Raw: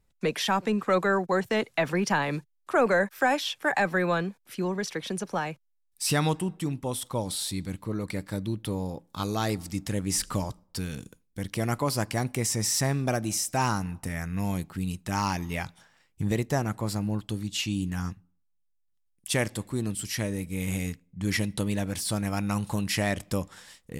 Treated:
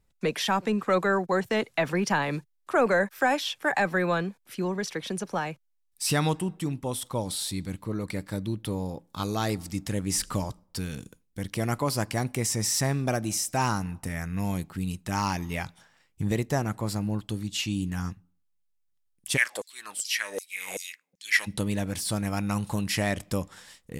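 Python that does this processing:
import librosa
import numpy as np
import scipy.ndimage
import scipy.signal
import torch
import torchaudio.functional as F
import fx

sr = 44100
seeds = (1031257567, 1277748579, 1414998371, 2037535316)

y = fx.filter_lfo_highpass(x, sr, shape='saw_down', hz=2.6, low_hz=470.0, high_hz=6600.0, q=4.3, at=(19.36, 21.46), fade=0.02)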